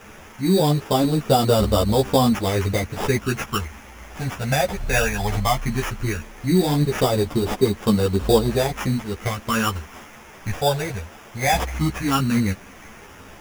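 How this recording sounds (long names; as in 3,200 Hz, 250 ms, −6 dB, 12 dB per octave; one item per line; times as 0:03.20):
a quantiser's noise floor 8 bits, dither triangular
phaser sweep stages 8, 0.16 Hz, lowest notch 320–2,200 Hz
aliases and images of a low sample rate 4,200 Hz, jitter 0%
a shimmering, thickened sound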